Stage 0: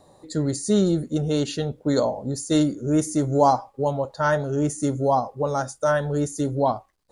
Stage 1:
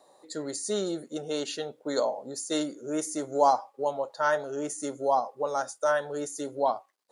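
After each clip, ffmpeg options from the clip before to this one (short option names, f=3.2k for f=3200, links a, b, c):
-af "highpass=450,volume=-3dB"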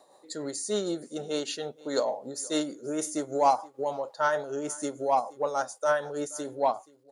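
-filter_complex "[0:a]tremolo=f=6.6:d=0.42,asplit=2[a][b];[b]asoftclip=type=tanh:threshold=-20.5dB,volume=-4.5dB[c];[a][c]amix=inputs=2:normalize=0,aecho=1:1:476:0.0708,volume=-2dB"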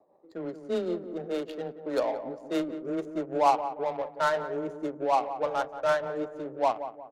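-filter_complex "[0:a]afreqshift=13,adynamicsmooth=sensitivity=3.5:basefreq=550,asplit=2[a][b];[b]adelay=179,lowpass=f=1.2k:p=1,volume=-10dB,asplit=2[c][d];[d]adelay=179,lowpass=f=1.2k:p=1,volume=0.42,asplit=2[e][f];[f]adelay=179,lowpass=f=1.2k:p=1,volume=0.42,asplit=2[g][h];[h]adelay=179,lowpass=f=1.2k:p=1,volume=0.42[i];[a][c][e][g][i]amix=inputs=5:normalize=0"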